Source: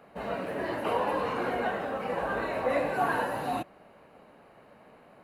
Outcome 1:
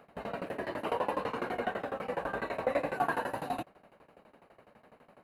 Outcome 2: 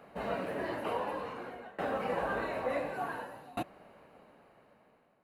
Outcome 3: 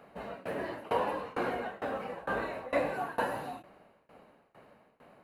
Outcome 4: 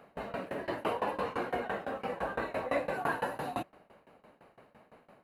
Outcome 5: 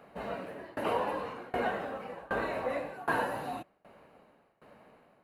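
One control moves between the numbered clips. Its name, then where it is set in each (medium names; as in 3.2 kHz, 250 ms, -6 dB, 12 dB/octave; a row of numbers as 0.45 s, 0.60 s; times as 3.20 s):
tremolo, rate: 12 Hz, 0.56 Hz, 2.2 Hz, 5.9 Hz, 1.3 Hz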